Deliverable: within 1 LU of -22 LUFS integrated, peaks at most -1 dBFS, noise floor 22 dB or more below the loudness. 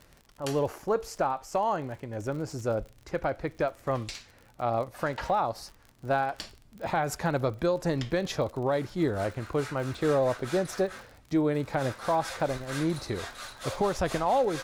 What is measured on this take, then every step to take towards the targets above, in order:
tick rate 47 per s; loudness -30.0 LUFS; peak level -16.0 dBFS; loudness target -22.0 LUFS
-> de-click; trim +8 dB

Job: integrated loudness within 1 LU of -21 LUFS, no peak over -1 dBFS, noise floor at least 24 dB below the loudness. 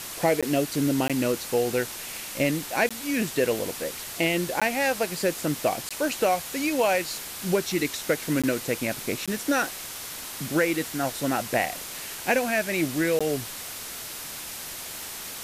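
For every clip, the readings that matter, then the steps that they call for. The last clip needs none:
dropouts 8; longest dropout 16 ms; noise floor -37 dBFS; noise floor target -51 dBFS; loudness -26.5 LUFS; peak level -10.5 dBFS; loudness target -21.0 LUFS
-> interpolate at 0.41/1.08/2.89/4.60/5.89/8.42/9.26/13.19 s, 16 ms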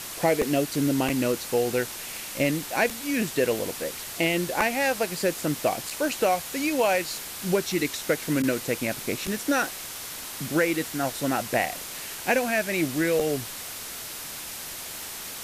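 dropouts 0; noise floor -37 dBFS; noise floor target -51 dBFS
-> noise print and reduce 14 dB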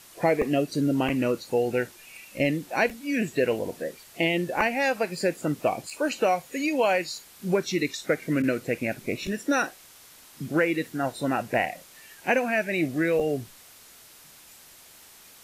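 noise floor -51 dBFS; loudness -26.5 LUFS; peak level -11.0 dBFS; loudness target -21.0 LUFS
-> trim +5.5 dB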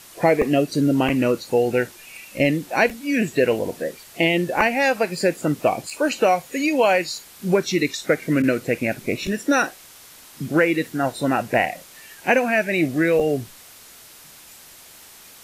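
loudness -21.0 LUFS; peak level -5.5 dBFS; noise floor -46 dBFS

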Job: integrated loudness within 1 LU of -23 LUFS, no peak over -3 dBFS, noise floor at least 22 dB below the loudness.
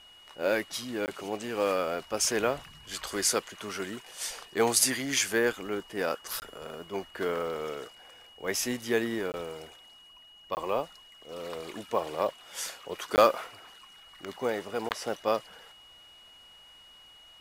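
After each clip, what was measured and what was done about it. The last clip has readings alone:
dropouts 6; longest dropout 19 ms; steady tone 2.9 kHz; tone level -52 dBFS; loudness -30.5 LUFS; peak level -10.0 dBFS; loudness target -23.0 LUFS
-> interpolate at 1.06/6.40/9.32/10.55/13.16/14.89 s, 19 ms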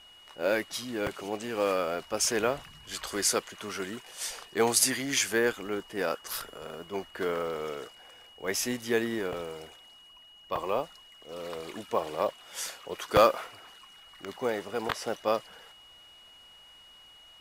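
dropouts 0; steady tone 2.9 kHz; tone level -52 dBFS
-> band-stop 2.9 kHz, Q 30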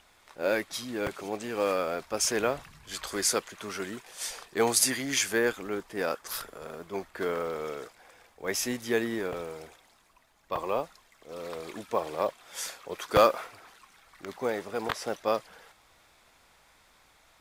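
steady tone not found; loudness -30.5 LUFS; peak level -8.0 dBFS; loudness target -23.0 LUFS
-> trim +7.5 dB; peak limiter -3 dBFS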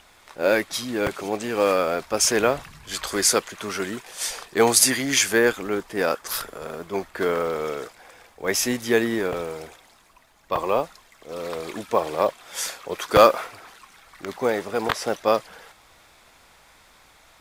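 loudness -23.0 LUFS; peak level -3.0 dBFS; noise floor -55 dBFS

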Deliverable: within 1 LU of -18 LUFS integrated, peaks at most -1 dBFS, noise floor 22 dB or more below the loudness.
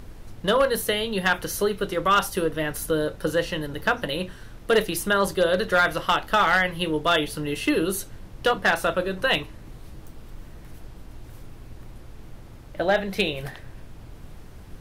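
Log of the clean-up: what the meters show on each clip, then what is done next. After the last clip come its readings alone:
clipped samples 0.3%; clipping level -12.5 dBFS; noise floor -44 dBFS; noise floor target -46 dBFS; loudness -23.5 LUFS; peak level -12.5 dBFS; loudness target -18.0 LUFS
-> clip repair -12.5 dBFS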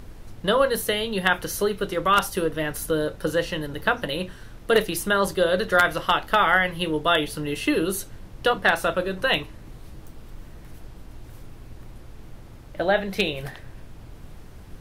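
clipped samples 0.0%; noise floor -44 dBFS; noise floor target -46 dBFS
-> noise print and reduce 6 dB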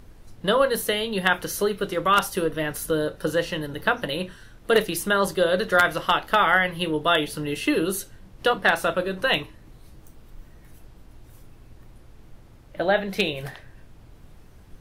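noise floor -50 dBFS; loudness -23.5 LUFS; peak level -3.5 dBFS; loudness target -18.0 LUFS
-> trim +5.5 dB; peak limiter -1 dBFS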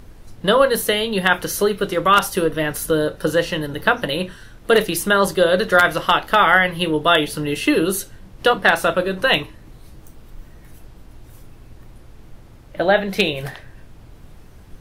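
loudness -18.0 LUFS; peak level -1.0 dBFS; noise floor -44 dBFS

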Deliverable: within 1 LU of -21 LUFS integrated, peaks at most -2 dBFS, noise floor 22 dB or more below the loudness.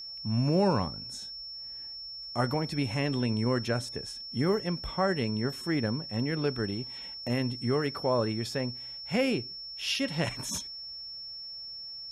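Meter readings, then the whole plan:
steady tone 5.4 kHz; tone level -39 dBFS; loudness -31.0 LUFS; peak level -14.5 dBFS; loudness target -21.0 LUFS
-> band-stop 5.4 kHz, Q 30; trim +10 dB

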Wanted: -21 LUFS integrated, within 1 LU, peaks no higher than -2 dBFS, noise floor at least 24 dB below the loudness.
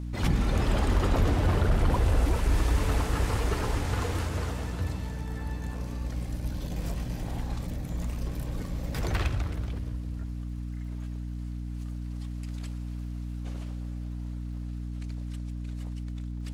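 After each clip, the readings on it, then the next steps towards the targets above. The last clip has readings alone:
tick rate 43 per s; hum 60 Hz; highest harmonic 300 Hz; hum level -32 dBFS; loudness -31.5 LUFS; peak level -14.0 dBFS; loudness target -21.0 LUFS
-> de-click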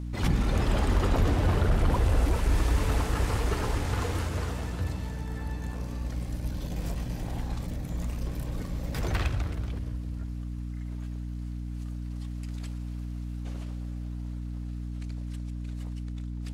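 tick rate 0.48 per s; hum 60 Hz; highest harmonic 300 Hz; hum level -32 dBFS
-> de-hum 60 Hz, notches 5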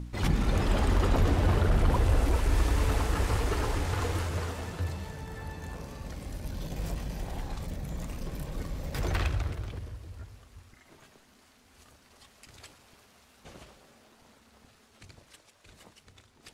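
hum not found; loudness -31.0 LUFS; peak level -14.0 dBFS; loudness target -21.0 LUFS
-> trim +10 dB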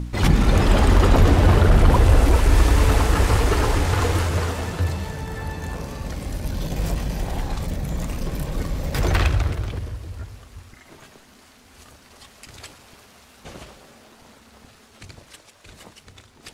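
loudness -21.0 LUFS; peak level -4.0 dBFS; noise floor -51 dBFS

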